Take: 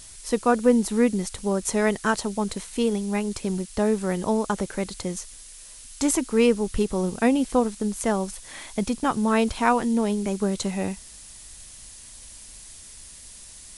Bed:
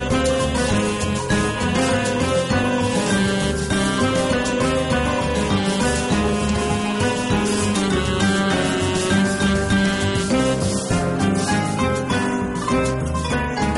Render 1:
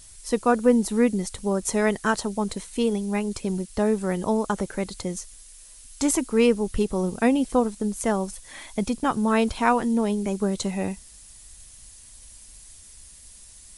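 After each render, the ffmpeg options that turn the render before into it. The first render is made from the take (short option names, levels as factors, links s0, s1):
-af "afftdn=nr=6:nf=-45"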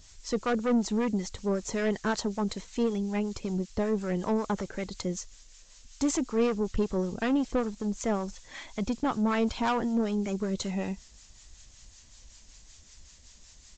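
-filter_complex "[0:a]aresample=16000,asoftclip=type=tanh:threshold=0.112,aresample=44100,acrossover=split=780[s0][s1];[s0]aeval=exprs='val(0)*(1-0.5/2+0.5/2*cos(2*PI*5.3*n/s))':c=same[s2];[s1]aeval=exprs='val(0)*(1-0.5/2-0.5/2*cos(2*PI*5.3*n/s))':c=same[s3];[s2][s3]amix=inputs=2:normalize=0"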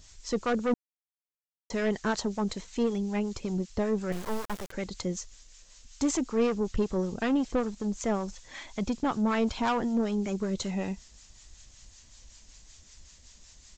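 -filter_complex "[0:a]asettb=1/sr,asplit=3[s0][s1][s2];[s0]atrim=end=4.124[s3];[s1]atrim=start=4.12:end=4.72,asetpts=PTS-STARTPTS,afade=t=in:d=0.004:c=qsin,afade=t=out:st=0.596:d=0.004:c=qsin,acrusher=bits=4:dc=4:mix=0:aa=0.000001[s4];[s2]atrim=start=4.716[s5];[s3][s4]acrossfade=d=0.004:c1=hsin:c2=qsin[s6];[s6][s5]acrossfade=d=0.004:c1=qsin:c2=hsin,asplit=3[s7][s8][s9];[s7]atrim=end=0.74,asetpts=PTS-STARTPTS,afade=t=out:st=0.736:d=0.004:c=hsin[s10];[s8]atrim=start=0.74:end=1.7,asetpts=PTS-STARTPTS,volume=0[s11];[s9]atrim=start=1.7,asetpts=PTS-STARTPTS,afade=t=in:d=0.004:c=hsin[s12];[s10][s11][s12]concat=n=3:v=0:a=1"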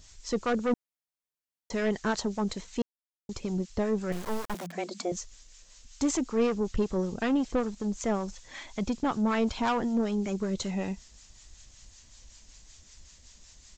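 -filter_complex "[0:a]asettb=1/sr,asplit=3[s0][s1][s2];[s0]atrim=end=4.544[s3];[s1]atrim=start=4.54:end=5.12,asetpts=PTS-STARTPTS,afade=t=in:d=0.004:c=qsin,afade=t=out:st=0.576:d=0.004:c=qsin,afreqshift=170[s4];[s2]atrim=start=5.116[s5];[s3][s4]acrossfade=d=0.004:c1=hsin:c2=qsin[s6];[s6][s5]acrossfade=d=0.004:c1=qsin:c2=hsin,asplit=3[s7][s8][s9];[s7]atrim=end=2.82,asetpts=PTS-STARTPTS,afade=t=out:st=2.816:d=0.004:c=hsin[s10];[s8]atrim=start=2.82:end=3.29,asetpts=PTS-STARTPTS,volume=0[s11];[s9]atrim=start=3.29,asetpts=PTS-STARTPTS,afade=t=in:d=0.004:c=hsin[s12];[s10][s11][s12]concat=n=3:v=0:a=1"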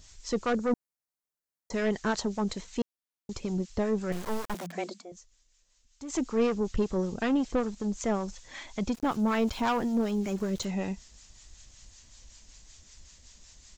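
-filter_complex "[0:a]asettb=1/sr,asplit=3[s0][s1][s2];[s0]atrim=end=0.574[s3];[s1]atrim=start=0.57:end=1.74,asetpts=PTS-STARTPTS,afade=t=in:d=0.004:c=qsin,afade=t=out:st=1.166:d=0.004:c=qsin,equalizer=f=3000:t=o:w=0.77:g=-9[s4];[s2]atrim=start=1.736[s5];[s3][s4]acrossfade=d=0.004:c1=hsin:c2=qsin[s6];[s6][s5]acrossfade=d=0.004:c1=qsin:c2=hsin,asettb=1/sr,asplit=3[s7][s8][s9];[s7]atrim=end=8.944[s10];[s8]atrim=start=8.94:end=10.65,asetpts=PTS-STARTPTS,afade=t=in:d=0.004:c=qsin,afade=t=out:st=1.706:d=0.004:c=qsin,aeval=exprs='val(0)*gte(abs(val(0)),0.00596)':c=same[s11];[s9]atrim=start=10.646[s12];[s10][s11]acrossfade=d=0.004:c1=hsin:c2=qsin[s13];[s13][s12]acrossfade=d=0.004:c1=qsin:c2=hsin,asplit=3[s14][s15][s16];[s14]atrim=end=5.03,asetpts=PTS-STARTPTS,afade=t=out:st=4.9:d=0.13:c=qua:silence=0.188365[s17];[s15]atrim=start=5.03:end=6.05,asetpts=PTS-STARTPTS,volume=0.188[s18];[s16]atrim=start=6.05,asetpts=PTS-STARTPTS,afade=t=in:d=0.13:c=qua:silence=0.188365[s19];[s17][s18][s19]concat=n=3:v=0:a=1"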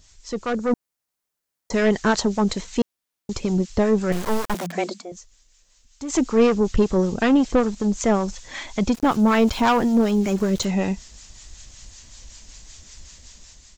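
-af "dynaudnorm=f=280:g=5:m=2.99"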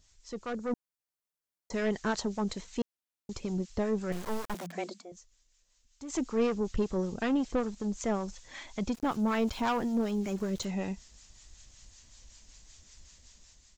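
-af "volume=0.266"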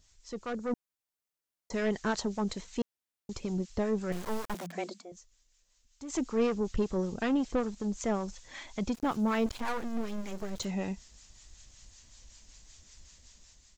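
-filter_complex "[0:a]asettb=1/sr,asplit=3[s0][s1][s2];[s0]atrim=end=9.464[s3];[s1]atrim=start=9.46:end=10.59,asetpts=PTS-STARTPTS,afade=t=in:d=0.004:c=qsin,afade=t=out:st=1.126:d=0.004:c=qsin,aeval=exprs='max(val(0),0)':c=same[s4];[s2]atrim=start=10.586[s5];[s3][s4]acrossfade=d=0.004:c1=hsin:c2=qsin[s6];[s6][s5]acrossfade=d=0.004:c1=qsin:c2=hsin"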